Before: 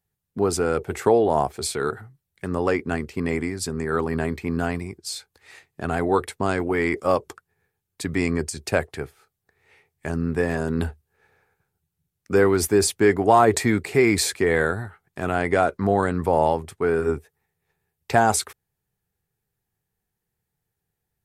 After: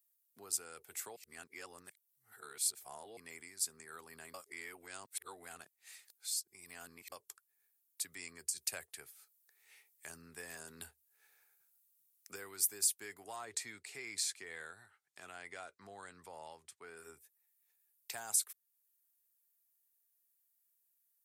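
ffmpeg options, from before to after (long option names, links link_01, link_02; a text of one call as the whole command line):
ffmpeg -i in.wav -filter_complex "[0:a]asettb=1/sr,asplit=3[link_01][link_02][link_03];[link_01]atrim=end=13.364[link_04];[link_02]atrim=start=13.36:end=16.97,asetpts=PTS-STARTPTS,afade=type=in:duration=0.004:curve=qsin,afade=type=out:start_time=3.606:duration=0.004:curve=qsin,lowpass=6600[link_05];[link_03]atrim=start=16.966[link_06];[link_04][link_05]acrossfade=duration=0.004:curve1=hsin:curve2=qsin[link_07];[link_07][link_06]acrossfade=duration=0.004:curve1=qsin:curve2=hsin,asplit=7[link_08][link_09][link_10][link_11][link_12][link_13][link_14];[link_08]atrim=end=1.162[link_15];[link_09]atrim=start=1.158:end=3.172,asetpts=PTS-STARTPTS,areverse[link_16];[link_10]atrim=start=3.168:end=4.342[link_17];[link_11]atrim=start=4.338:end=7.122,asetpts=PTS-STARTPTS,areverse[link_18];[link_12]atrim=start=7.118:end=8.562[link_19];[link_13]atrim=start=8.558:end=12.362,asetpts=PTS-STARTPTS,volume=4dB[link_20];[link_14]atrim=start=12.358[link_21];[link_15][link_16]acrossfade=duration=0.004:curve1=hsin:curve2=hsin[link_22];[link_22][link_17]acrossfade=duration=0.004:curve1=hsin:curve2=hsin[link_23];[link_23][link_18]acrossfade=duration=0.004:curve1=hsin:curve2=hsin[link_24];[link_24][link_19]acrossfade=duration=0.004:curve1=hsin:curve2=hsin[link_25];[link_25][link_20]acrossfade=duration=0.004:curve1=hsin:curve2=hsin[link_26];[link_26][link_21]acrossfade=duration=0.004:curve1=hsin:curve2=hsin,highshelf=frequency=8500:gain=7,acrossover=split=140[link_27][link_28];[link_28]acompressor=threshold=-44dB:ratio=1.5[link_29];[link_27][link_29]amix=inputs=2:normalize=0,aderivative,volume=-1dB" out.wav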